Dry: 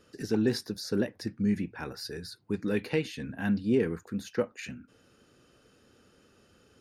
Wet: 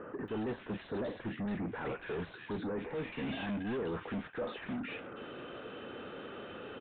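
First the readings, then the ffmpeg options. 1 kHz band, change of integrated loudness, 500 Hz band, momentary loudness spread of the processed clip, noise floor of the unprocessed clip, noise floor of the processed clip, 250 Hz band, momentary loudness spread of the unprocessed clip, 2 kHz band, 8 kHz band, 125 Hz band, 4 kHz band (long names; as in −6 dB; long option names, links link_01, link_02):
+2.5 dB, −8.5 dB, −6.0 dB, 9 LU, −64 dBFS, −52 dBFS, −8.0 dB, 11 LU, −3.0 dB, below −30 dB, −7.5 dB, −7.5 dB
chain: -filter_complex "[0:a]areverse,acompressor=threshold=-35dB:ratio=6,areverse,asplit=2[link_01][link_02];[link_02]highpass=frequency=720:poles=1,volume=34dB,asoftclip=type=tanh:threshold=-28dB[link_03];[link_01][link_03]amix=inputs=2:normalize=0,lowpass=frequency=1400:poles=1,volume=-6dB,aresample=8000,aresample=44100,acrossover=split=1700[link_04][link_05];[link_05]adelay=280[link_06];[link_04][link_06]amix=inputs=2:normalize=0,volume=-1.5dB"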